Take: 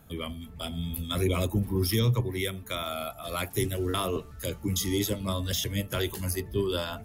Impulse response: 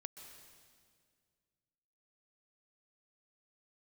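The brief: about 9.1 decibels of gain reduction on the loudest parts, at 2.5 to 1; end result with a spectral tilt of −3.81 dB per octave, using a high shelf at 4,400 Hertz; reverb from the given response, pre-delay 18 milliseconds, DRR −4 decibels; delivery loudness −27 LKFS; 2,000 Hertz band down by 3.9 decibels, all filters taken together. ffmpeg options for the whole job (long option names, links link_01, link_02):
-filter_complex "[0:a]equalizer=frequency=2000:width_type=o:gain=-6.5,highshelf=frequency=4400:gain=7,acompressor=threshold=-35dB:ratio=2.5,asplit=2[link_01][link_02];[1:a]atrim=start_sample=2205,adelay=18[link_03];[link_02][link_03]afir=irnorm=-1:irlink=0,volume=8.5dB[link_04];[link_01][link_04]amix=inputs=2:normalize=0,volume=3.5dB"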